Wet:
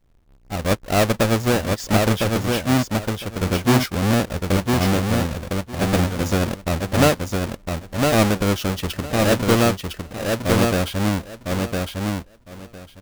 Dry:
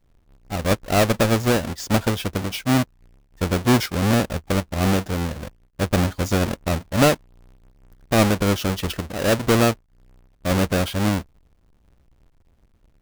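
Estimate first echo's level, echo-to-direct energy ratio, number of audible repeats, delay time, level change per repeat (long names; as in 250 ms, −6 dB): −3.5 dB, −3.5 dB, 3, 1,007 ms, −15.5 dB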